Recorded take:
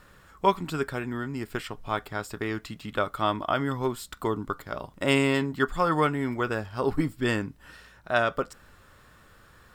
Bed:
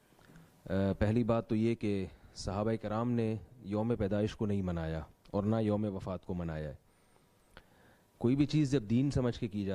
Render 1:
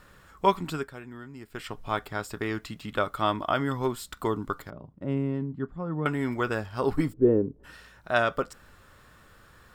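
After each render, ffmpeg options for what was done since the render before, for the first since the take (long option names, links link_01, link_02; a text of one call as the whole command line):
ffmpeg -i in.wav -filter_complex "[0:a]asettb=1/sr,asplit=3[link_01][link_02][link_03];[link_01]atrim=end=4.704[link_04];[link_02]atrim=start=4.7:end=6.06,asetpts=PTS-STARTPTS,afade=type=in:duration=0.004:curve=qsin,afade=type=out:start_time=1.356:duration=0.004:curve=qsin,bandpass=frequency=150:width_type=q:width=0.96[link_05];[link_03]atrim=start=6.056[link_06];[link_04][link_05]acrossfade=duration=0.004:curve1=hsin:curve2=qsin[link_07];[link_07][link_06]acrossfade=duration=0.004:curve1=qsin:curve2=hsin,asplit=3[link_08][link_09][link_10];[link_08]afade=type=out:start_time=7.12:duration=0.02[link_11];[link_09]lowpass=frequency=440:width_type=q:width=4.3,afade=type=in:start_time=7.12:duration=0.02,afade=type=out:start_time=7.63:duration=0.02[link_12];[link_10]afade=type=in:start_time=7.63:duration=0.02[link_13];[link_11][link_12][link_13]amix=inputs=3:normalize=0,asplit=3[link_14][link_15][link_16];[link_14]atrim=end=0.89,asetpts=PTS-STARTPTS,afade=type=out:start_time=0.71:duration=0.18:silence=0.298538[link_17];[link_15]atrim=start=0.89:end=1.52,asetpts=PTS-STARTPTS,volume=-10.5dB[link_18];[link_16]atrim=start=1.52,asetpts=PTS-STARTPTS,afade=type=in:duration=0.18:silence=0.298538[link_19];[link_17][link_18][link_19]concat=n=3:v=0:a=1" out.wav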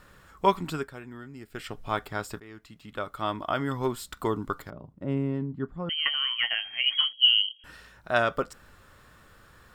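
ffmpeg -i in.wav -filter_complex "[0:a]asettb=1/sr,asplit=3[link_01][link_02][link_03];[link_01]atrim=end=1.214[link_04];[link_02]atrim=start=1.21:end=1.86,asetpts=PTS-STARTPTS,afade=type=in:duration=0.004:curve=qsin,afade=type=out:start_time=0.646:duration=0.004:curve=qsin,equalizer=frequency=1000:width=5.3:gain=-8.5[link_05];[link_03]atrim=start=1.856[link_06];[link_04][link_05]acrossfade=duration=0.004:curve1=hsin:curve2=qsin[link_07];[link_07][link_06]acrossfade=duration=0.004:curve1=qsin:curve2=hsin,asettb=1/sr,asplit=3[link_08][link_09][link_10];[link_08]atrim=end=5.894[link_11];[link_09]atrim=start=5.89:end=7.64,asetpts=PTS-STARTPTS,afade=type=in:duration=0.004:curve=qsin,afade=type=out:start_time=1.746:duration=0.004:curve=qsin,lowpass=frequency=2800:width_type=q:width=0.5098,lowpass=frequency=2800:width_type=q:width=0.6013,lowpass=frequency=2800:width_type=q:width=0.9,lowpass=frequency=2800:width_type=q:width=2.563,afreqshift=-3300[link_12];[link_10]atrim=start=7.636[link_13];[link_11][link_12]acrossfade=duration=0.004:curve1=hsin:curve2=qsin[link_14];[link_14][link_13]acrossfade=duration=0.004:curve1=qsin:curve2=hsin,asplit=2[link_15][link_16];[link_15]atrim=end=2.4,asetpts=PTS-STARTPTS,afade=type=out:start_time=2.396:duration=0.004:curve=hsin:silence=0.105925[link_17];[link_16]atrim=start=2.4,asetpts=PTS-STARTPTS,afade=type=in:duration=1.52:silence=0.105925[link_18];[link_17][link_18]concat=n=2:v=0:a=1" out.wav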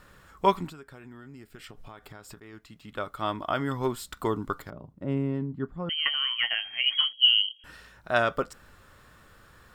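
ffmpeg -i in.wav -filter_complex "[0:a]asettb=1/sr,asplit=3[link_01][link_02][link_03];[link_01]atrim=end=0.674[link_04];[link_02]atrim=start=0.67:end=2.53,asetpts=PTS-STARTPTS,afade=type=in:duration=0.004:curve=qsin,afade=type=out:start_time=1.856:duration=0.004:curve=qsin,acompressor=threshold=-41dB:ratio=10:attack=3.2:release=140:knee=1:detection=peak[link_05];[link_03]atrim=start=2.526[link_06];[link_04][link_05]acrossfade=duration=0.004:curve1=hsin:curve2=qsin[link_07];[link_07][link_06]acrossfade=duration=0.004:curve1=qsin:curve2=hsin" out.wav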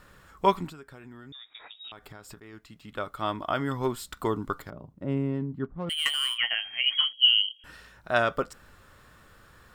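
ffmpeg -i in.wav -filter_complex "[0:a]asettb=1/sr,asplit=3[link_01][link_02][link_03];[link_01]atrim=end=1.324[link_04];[link_02]atrim=start=1.32:end=1.92,asetpts=PTS-STARTPTS,afade=type=in:duration=0.004:curve=qsin,afade=type=out:start_time=0.596:duration=0.004:curve=qsin,lowpass=frequency=3200:width_type=q:width=0.5098,lowpass=frequency=3200:width_type=q:width=0.6013,lowpass=frequency=3200:width_type=q:width=0.9,lowpass=frequency=3200:width_type=q:width=2.563,afreqshift=-3800[link_05];[link_03]atrim=start=1.916[link_06];[link_04][link_05]acrossfade=duration=0.004:curve1=hsin:curve2=qsin[link_07];[link_07][link_06]acrossfade=duration=0.004:curve1=qsin:curve2=hsin,asettb=1/sr,asplit=3[link_08][link_09][link_10];[link_08]atrim=end=5.644[link_11];[link_09]atrim=start=5.64:end=6.38,asetpts=PTS-STARTPTS,afade=type=in:duration=0.004:curve=qsin,afade=type=out:start_time=0.736:duration=0.004:curve=qsin,adynamicsmooth=sensitivity=6.5:basefreq=1100[link_12];[link_10]atrim=start=6.376[link_13];[link_11][link_12]acrossfade=duration=0.004:curve1=hsin:curve2=qsin[link_14];[link_14][link_13]acrossfade=duration=0.004:curve1=qsin:curve2=hsin" out.wav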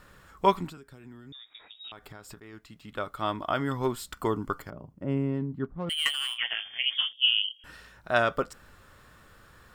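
ffmpeg -i in.wav -filter_complex "[0:a]asettb=1/sr,asplit=3[link_01][link_02][link_03];[link_01]atrim=end=0.774[link_04];[link_02]atrim=start=0.77:end=1.84,asetpts=PTS-STARTPTS,afade=type=in:duration=0.004:curve=qsin,afade=type=out:start_time=1.066:duration=0.004:curve=qsin,acrossover=split=400|3000[link_05][link_06][link_07];[link_06]acompressor=threshold=-55dB:ratio=6:attack=3.2:release=140:knee=2.83:detection=peak[link_08];[link_05][link_08][link_07]amix=inputs=3:normalize=0[link_09];[link_03]atrim=start=1.836[link_10];[link_04][link_09]acrossfade=duration=0.004:curve1=hsin:curve2=qsin[link_11];[link_11][link_10]acrossfade=duration=0.004:curve1=qsin:curve2=hsin,asettb=1/sr,asplit=3[link_12][link_13][link_14];[link_12]atrim=end=4.134[link_15];[link_13]atrim=start=4.13:end=5.37,asetpts=PTS-STARTPTS,afade=type=in:duration=0.004:curve=qsin,afade=type=out:start_time=1.236:duration=0.004:curve=qsin,asuperstop=centerf=3800:order=4:qfactor=6.6[link_16];[link_14]atrim=start=5.366[link_17];[link_15][link_16]acrossfade=duration=0.004:curve1=hsin:curve2=qsin[link_18];[link_18][link_17]acrossfade=duration=0.004:curve1=qsin:curve2=hsin,asettb=1/sr,asplit=3[link_19][link_20][link_21];[link_19]atrim=end=6.114[link_22];[link_20]atrim=start=6.11:end=7.44,asetpts=PTS-STARTPTS,afade=type=in:duration=0.004:curve=qsin,afade=type=out:start_time=1.326:duration=0.004:curve=qsin,tremolo=f=270:d=0.788[link_23];[link_21]atrim=start=7.436[link_24];[link_22][link_23]acrossfade=duration=0.004:curve1=hsin:curve2=qsin[link_25];[link_25][link_24]acrossfade=duration=0.004:curve1=qsin:curve2=hsin" out.wav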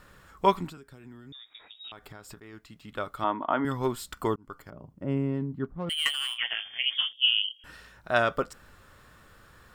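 ffmpeg -i in.wav -filter_complex "[0:a]asettb=1/sr,asplit=3[link_01][link_02][link_03];[link_01]atrim=end=3.244[link_04];[link_02]atrim=start=3.24:end=3.65,asetpts=PTS-STARTPTS,afade=type=in:duration=0.004:curve=qsin,afade=type=out:start_time=0.406:duration=0.004:curve=qsin,highpass=210,equalizer=frequency=260:width_type=q:width=4:gain=7,equalizer=frequency=920:width_type=q:width=4:gain=8,equalizer=frequency=2500:width_type=q:width=4:gain=-4,lowpass=frequency=2800:width=0.5412,lowpass=frequency=2800:width=1.3066[link_05];[link_03]atrim=start=3.646[link_06];[link_04][link_05]acrossfade=duration=0.004:curve1=hsin:curve2=qsin[link_07];[link_07][link_06]acrossfade=duration=0.004:curve1=qsin:curve2=hsin,asplit=2[link_08][link_09];[link_08]atrim=end=4.36,asetpts=PTS-STARTPTS,afade=type=out:start_time=4.356:duration=0.004:curve=hsin[link_10];[link_09]atrim=start=4.36,asetpts=PTS-STARTPTS,afade=type=in:duration=0.56[link_11];[link_10][link_11]concat=n=2:v=0:a=1" out.wav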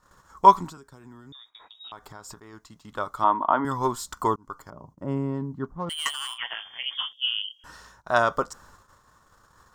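ffmpeg -i in.wav -af "agate=range=-15dB:threshold=-53dB:ratio=16:detection=peak,equalizer=frequency=1000:width_type=o:width=0.67:gain=11,equalizer=frequency=2500:width_type=o:width=0.67:gain=-8,equalizer=frequency=6300:width_type=o:width=0.67:gain=11" out.wav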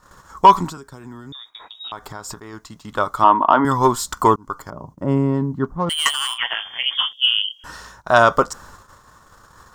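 ffmpeg -i in.wav -af "acontrast=49,alimiter=level_in=4dB:limit=-1dB:release=50:level=0:latency=1" out.wav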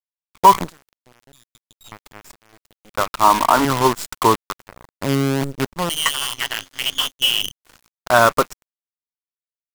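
ffmpeg -i in.wav -af "acrusher=bits=4:dc=4:mix=0:aa=0.000001,aeval=exprs='sgn(val(0))*max(abs(val(0))-0.0224,0)':channel_layout=same" out.wav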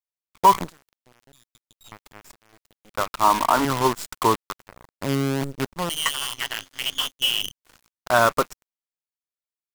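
ffmpeg -i in.wav -af "volume=-4.5dB" out.wav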